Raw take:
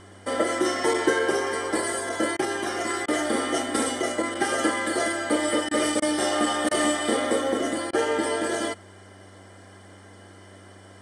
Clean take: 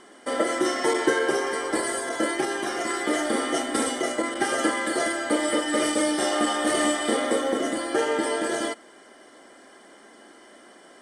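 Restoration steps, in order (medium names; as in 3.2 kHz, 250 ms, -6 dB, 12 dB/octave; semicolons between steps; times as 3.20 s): de-hum 96.5 Hz, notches 10; interpolate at 2.37/3.06/5.69/6.00/6.69/7.91 s, 20 ms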